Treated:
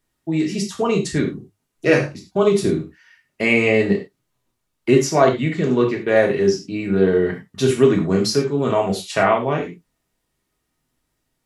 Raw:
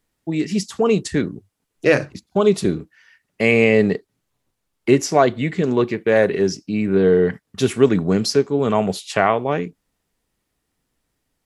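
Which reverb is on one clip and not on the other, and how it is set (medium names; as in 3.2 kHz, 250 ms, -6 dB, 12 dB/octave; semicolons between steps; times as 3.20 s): gated-style reverb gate 130 ms falling, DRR 0 dB; trim -2.5 dB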